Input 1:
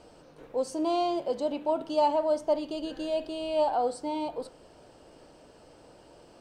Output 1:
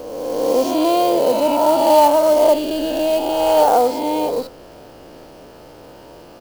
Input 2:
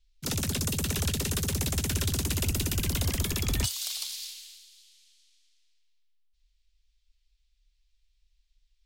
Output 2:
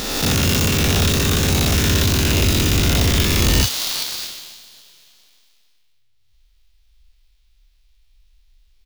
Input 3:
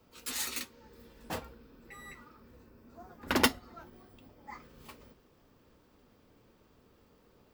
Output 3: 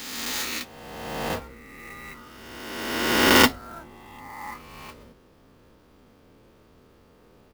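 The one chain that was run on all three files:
reverse spectral sustain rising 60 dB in 1.84 s; resampled via 16 kHz; sampling jitter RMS 0.023 ms; peak normalisation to -1.5 dBFS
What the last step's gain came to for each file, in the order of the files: +10.0 dB, +9.0 dB, +5.0 dB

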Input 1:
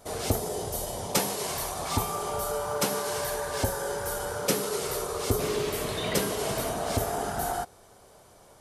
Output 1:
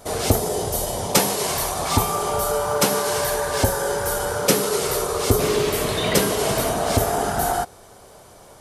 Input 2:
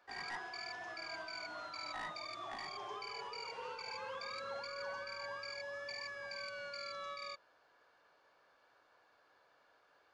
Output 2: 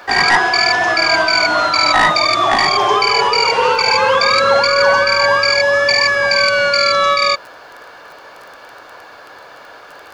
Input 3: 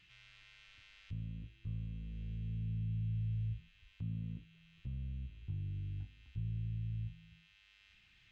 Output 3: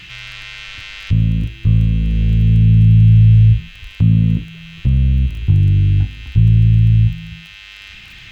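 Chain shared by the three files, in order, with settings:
crackle 14 per s -59 dBFS; peak normalisation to -2 dBFS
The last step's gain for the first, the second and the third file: +8.5 dB, +32.0 dB, +29.0 dB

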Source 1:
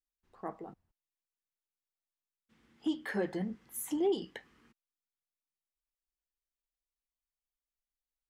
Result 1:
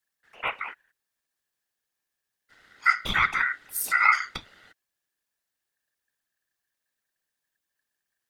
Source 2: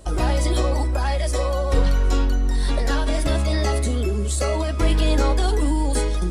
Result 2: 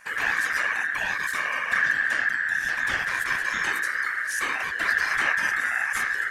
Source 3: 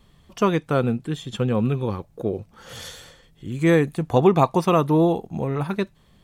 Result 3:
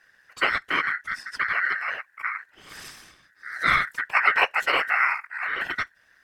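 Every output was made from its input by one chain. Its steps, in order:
whisper effect; ring modulator 1.7 kHz; normalise loudness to -24 LUFS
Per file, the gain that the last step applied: +13.5 dB, -3.0 dB, -1.5 dB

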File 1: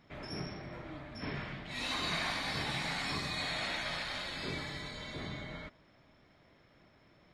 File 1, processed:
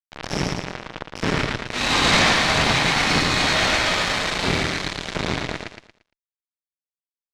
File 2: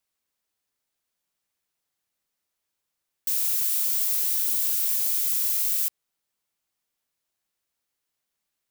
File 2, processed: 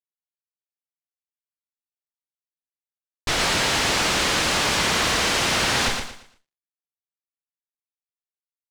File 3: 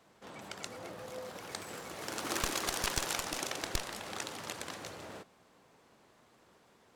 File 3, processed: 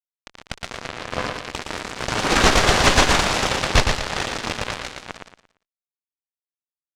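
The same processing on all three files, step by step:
two-slope reverb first 0.39 s, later 2.5 s, from -19 dB, DRR 7.5 dB; crossover distortion -45.5 dBFS; Chebyshev shaper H 8 -7 dB, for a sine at -10.5 dBFS; fuzz box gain 35 dB, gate -44 dBFS; distance through air 94 m; on a send: feedback delay 115 ms, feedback 30%, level -5.5 dB; on the sum: normalise loudness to -20 LUFS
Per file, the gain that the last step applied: +4.0 dB, -2.0 dB, +5.5 dB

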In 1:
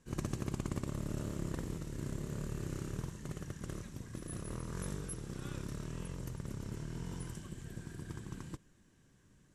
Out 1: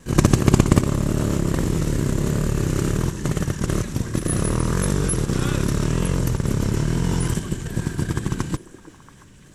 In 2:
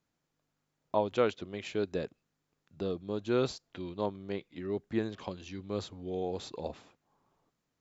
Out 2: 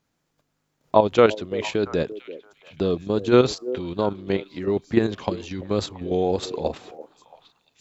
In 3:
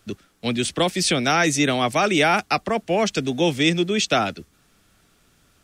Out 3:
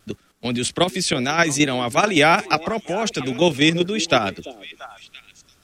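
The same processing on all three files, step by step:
level held to a coarse grid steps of 9 dB; repeats whose band climbs or falls 340 ms, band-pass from 400 Hz, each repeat 1.4 oct, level -12 dB; wow and flutter 35 cents; peak normalisation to -1.5 dBFS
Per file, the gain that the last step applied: +24.0 dB, +15.0 dB, +4.5 dB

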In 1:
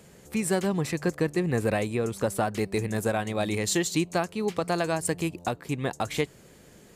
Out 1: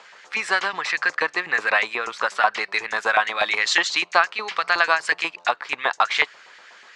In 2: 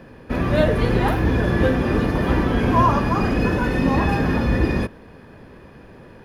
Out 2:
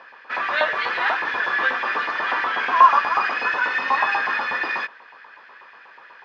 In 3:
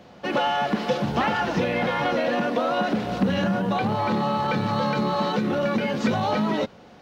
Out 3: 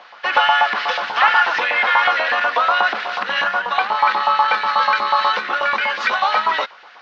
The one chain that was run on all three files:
low-pass 5.2 kHz 24 dB/octave; LFO high-pass saw up 8.2 Hz 910–1900 Hz; peak normalisation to -2 dBFS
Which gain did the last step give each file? +10.5 dB, +2.5 dB, +8.5 dB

